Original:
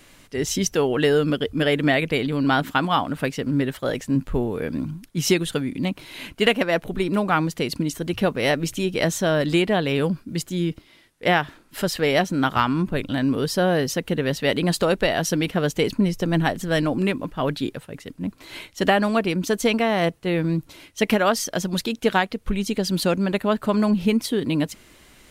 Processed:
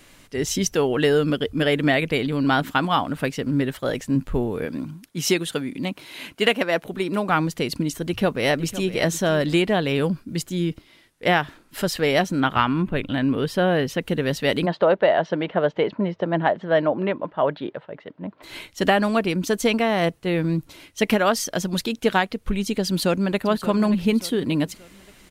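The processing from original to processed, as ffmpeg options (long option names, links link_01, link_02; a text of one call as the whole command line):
ffmpeg -i in.wav -filter_complex "[0:a]asettb=1/sr,asplit=3[link_01][link_02][link_03];[link_01]atrim=end=4.654[link_04];[link_02]atrim=start=4.65:end=7.29,asetpts=PTS-STARTPTS,afade=type=in:duration=0.004:curve=qsin,afade=type=out:start_time=2.636:duration=0.004:curve=qsin,highpass=frequency=220:poles=1[link_05];[link_03]atrim=start=7.286[link_06];[link_04][link_05]acrossfade=duration=0.004:curve1=hsin:curve2=qsin[link_07];[link_07][link_06]acrossfade=duration=0.004:curve1=qsin:curve2=hsin,asplit=2[link_08][link_09];[link_09]afade=type=in:start_time=8.03:duration=0.01,afade=type=out:start_time=8.9:duration=0.01,aecho=0:1:510|1020:0.188365|0.0282547[link_10];[link_08][link_10]amix=inputs=2:normalize=0,asettb=1/sr,asplit=3[link_11][link_12][link_13];[link_11]atrim=end=12.404[link_14];[link_12]atrim=start=12.4:end=14.01,asetpts=PTS-STARTPTS,afade=type=in:duration=0.004:curve=qsin,afade=type=out:start_time=1.606:duration=0.004:curve=qsin,highshelf=frequency=4000:width_type=q:width=1.5:gain=-7.5[link_15];[link_13]atrim=start=14.006[link_16];[link_14][link_15]acrossfade=duration=0.004:curve1=hsin:curve2=qsin[link_17];[link_17][link_16]acrossfade=duration=0.004:curve1=qsin:curve2=hsin,asplit=3[link_18][link_19][link_20];[link_18]afade=type=out:start_time=14.65:duration=0.02[link_21];[link_19]highpass=200,equalizer=frequency=260:width_type=q:width=4:gain=-7,equalizer=frequency=610:width_type=q:width=4:gain=8,equalizer=frequency=920:width_type=q:width=4:gain=5,equalizer=frequency=2500:width_type=q:width=4:gain=-7,lowpass=frequency=3000:width=0.5412,lowpass=frequency=3000:width=1.3066,afade=type=in:start_time=14.65:duration=0.02,afade=type=out:start_time=18.42:duration=0.02[link_22];[link_20]afade=type=in:start_time=18.42:duration=0.02[link_23];[link_21][link_22][link_23]amix=inputs=3:normalize=0,asplit=2[link_24][link_25];[link_25]afade=type=in:start_time=22.87:duration=0.01,afade=type=out:start_time=23.43:duration=0.01,aecho=0:1:580|1160|1740|2320:0.237137|0.0948549|0.037942|0.0151768[link_26];[link_24][link_26]amix=inputs=2:normalize=0" out.wav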